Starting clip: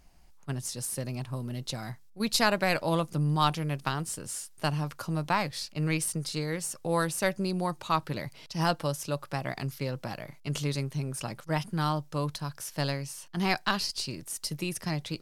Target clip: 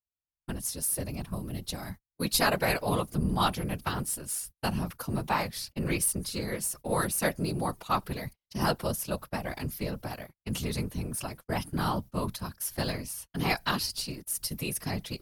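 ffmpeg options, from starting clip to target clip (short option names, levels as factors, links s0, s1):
-af "aexciter=amount=4:drive=3.3:freq=9900,agate=range=0.00501:threshold=0.01:ratio=16:detection=peak,afftfilt=real='hypot(re,im)*cos(2*PI*random(0))':imag='hypot(re,im)*sin(2*PI*random(1))':win_size=512:overlap=0.75,volume=1.78"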